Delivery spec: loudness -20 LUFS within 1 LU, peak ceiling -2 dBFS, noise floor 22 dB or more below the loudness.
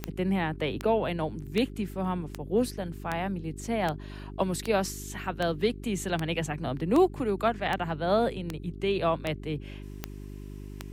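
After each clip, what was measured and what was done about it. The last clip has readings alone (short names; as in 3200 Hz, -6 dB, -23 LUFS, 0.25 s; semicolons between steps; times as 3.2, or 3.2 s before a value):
clicks 15; hum 50 Hz; harmonics up to 400 Hz; hum level -38 dBFS; loudness -29.5 LUFS; peak -12.0 dBFS; loudness target -20.0 LUFS
-> de-click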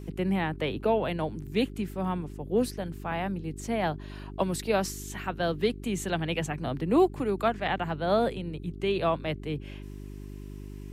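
clicks 0; hum 50 Hz; harmonics up to 400 Hz; hum level -38 dBFS
-> de-hum 50 Hz, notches 8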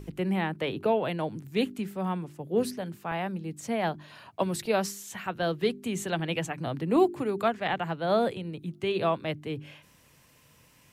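hum none; loudness -30.0 LUFS; peak -11.0 dBFS; loudness target -20.0 LUFS
-> gain +10 dB; limiter -2 dBFS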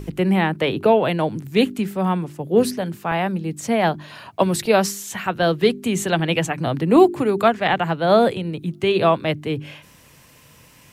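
loudness -20.0 LUFS; peak -2.0 dBFS; noise floor -50 dBFS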